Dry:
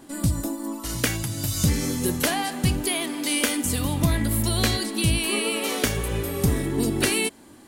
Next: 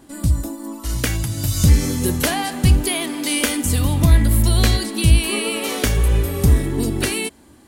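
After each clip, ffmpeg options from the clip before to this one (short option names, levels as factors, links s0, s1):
-af "equalizer=f=61:w=1.2:g=12.5,dynaudnorm=f=250:g=9:m=3.76,volume=0.891"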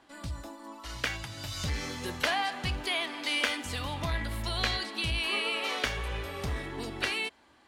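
-filter_complex "[0:a]asoftclip=type=tanh:threshold=0.631,acrossover=split=600 4900:gain=0.158 1 0.0891[s0][s1][s2];[s0][s1][s2]amix=inputs=3:normalize=0,volume=0.631"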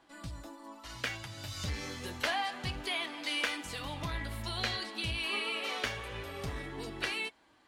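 -af "flanger=delay=6:depth=3.8:regen=-46:speed=0.28:shape=sinusoidal"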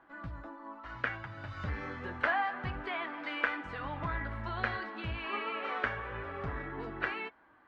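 -af "lowpass=f=1500:t=q:w=2.2"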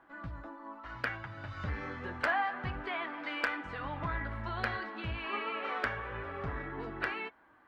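-af "asoftclip=type=hard:threshold=0.1"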